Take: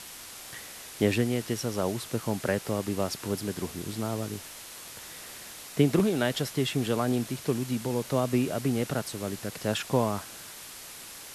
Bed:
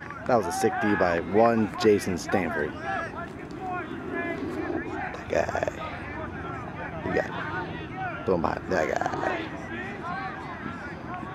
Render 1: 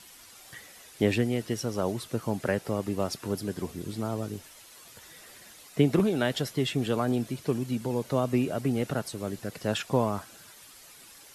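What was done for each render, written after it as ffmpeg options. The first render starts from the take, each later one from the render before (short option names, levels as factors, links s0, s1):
-af "afftdn=nr=10:nf=-44"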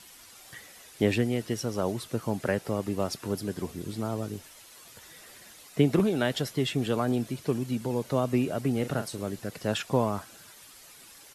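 -filter_complex "[0:a]asplit=3[s0][s1][s2];[s0]afade=t=out:st=8.83:d=0.02[s3];[s1]asplit=2[s4][s5];[s5]adelay=40,volume=0.316[s6];[s4][s6]amix=inputs=2:normalize=0,afade=t=in:st=8.83:d=0.02,afade=t=out:st=9.23:d=0.02[s7];[s2]afade=t=in:st=9.23:d=0.02[s8];[s3][s7][s8]amix=inputs=3:normalize=0"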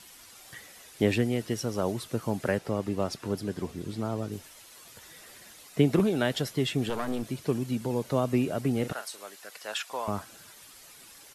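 -filter_complex "[0:a]asettb=1/sr,asplit=3[s0][s1][s2];[s0]atrim=end=2.584[s3];[s1]atrim=start=2.58:end=4.32,asetpts=PTS-STARTPTS,afade=t=in:d=0.004:c=qsin,afade=t=out:st=1.736:d=0.004:c=qsin,highshelf=f=8400:g=-9[s4];[s2]atrim=start=4.316[s5];[s3][s4]acrossfade=d=0.004:c1=hsin:c2=qsin[s6];[s6][s5]acrossfade=d=0.004:c1=qsin:c2=hsin,asettb=1/sr,asplit=3[s7][s8][s9];[s7]atrim=end=6.894[s10];[s8]atrim=start=6.89:end=7.31,asetpts=PTS-STARTPTS,afade=t=in:d=0.004:c=qsin,afade=t=out:st=0.416:d=0.004:c=qsin,aeval=exprs='clip(val(0),-1,0.0158)':c=same[s11];[s9]atrim=start=7.306[s12];[s10][s11]acrossfade=d=0.004:c1=hsin:c2=qsin[s13];[s13][s12]acrossfade=d=0.004:c1=qsin:c2=hsin,asettb=1/sr,asplit=3[s14][s15][s16];[s14]atrim=end=8.924[s17];[s15]atrim=start=8.92:end=10.08,asetpts=PTS-STARTPTS,afade=t=in:d=0.004:c=qsin,afade=t=out:st=1.156:d=0.004:c=qsin,highpass=900[s18];[s16]atrim=start=10.076[s19];[s17][s18]acrossfade=d=0.004:c1=hsin:c2=qsin[s20];[s20][s19]acrossfade=d=0.004:c1=qsin:c2=hsin"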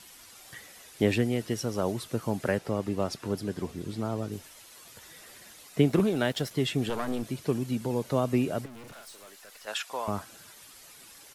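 -filter_complex "[0:a]asettb=1/sr,asplit=3[s0][s1][s2];[s0]atrim=end=5.824[s3];[s1]atrim=start=5.82:end=6.51,asetpts=PTS-STARTPTS,afade=t=in:d=0.004:c=qsin,afade=t=out:st=0.686:d=0.004:c=qsin,aeval=exprs='sgn(val(0))*max(abs(val(0))-0.00355,0)':c=same[s4];[s2]atrim=start=6.506[s5];[s3][s4]acrossfade=d=0.004:c1=hsin:c2=qsin[s6];[s6][s5]acrossfade=d=0.004:c1=qsin:c2=hsin,asplit=3[s7][s8][s9];[s7]afade=t=out:st=8.64:d=0.02[s10];[s8]aeval=exprs='(tanh(178*val(0)+0.2)-tanh(0.2))/178':c=same,afade=t=in:st=8.64:d=0.02,afade=t=out:st=9.66:d=0.02[s11];[s9]afade=t=in:st=9.66:d=0.02[s12];[s10][s11][s12]amix=inputs=3:normalize=0"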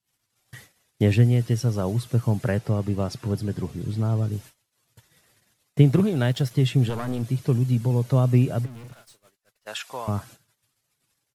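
-af "agate=range=0.0178:threshold=0.00447:ratio=16:detection=peak,equalizer=f=120:w=1.5:g=15"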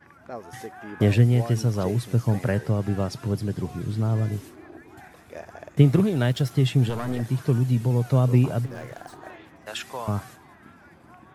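-filter_complex "[1:a]volume=0.188[s0];[0:a][s0]amix=inputs=2:normalize=0"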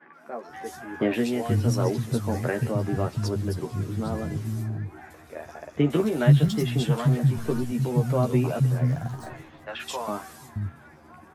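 -filter_complex "[0:a]asplit=2[s0][s1];[s1]adelay=13,volume=0.631[s2];[s0][s2]amix=inputs=2:normalize=0,acrossover=split=200|3100[s3][s4][s5];[s5]adelay=130[s6];[s3]adelay=480[s7];[s7][s4][s6]amix=inputs=3:normalize=0"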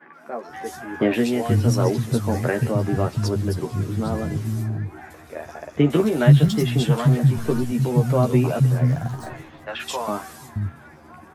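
-af "volume=1.68,alimiter=limit=0.794:level=0:latency=1"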